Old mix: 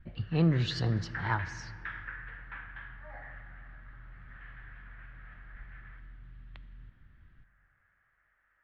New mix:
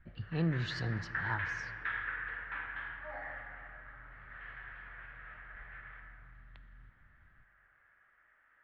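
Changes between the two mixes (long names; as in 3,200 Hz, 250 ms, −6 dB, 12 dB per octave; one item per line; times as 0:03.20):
speech −6.5 dB
background: send +9.5 dB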